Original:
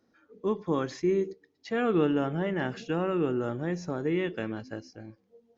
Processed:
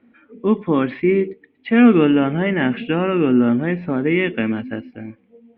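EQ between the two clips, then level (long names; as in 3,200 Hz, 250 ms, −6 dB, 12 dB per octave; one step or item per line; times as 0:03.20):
Butterworth low-pass 3,400 Hz 48 dB per octave
parametric band 240 Hz +14.5 dB 0.3 octaves
parametric band 2,300 Hz +11 dB 0.61 octaves
+8.0 dB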